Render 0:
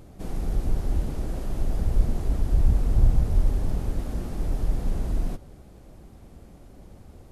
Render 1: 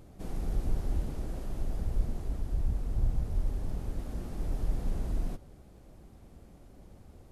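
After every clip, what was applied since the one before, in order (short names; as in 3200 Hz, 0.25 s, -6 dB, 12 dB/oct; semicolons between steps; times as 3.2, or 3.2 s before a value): vocal rider within 4 dB 2 s; gain -8.5 dB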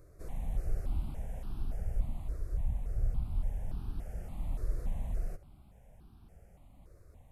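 step phaser 3.5 Hz 830–2000 Hz; gain -2.5 dB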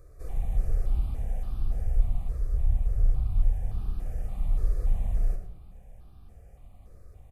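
echo 0.106 s -12 dB; reverb RT60 0.85 s, pre-delay 3 ms, DRR 4 dB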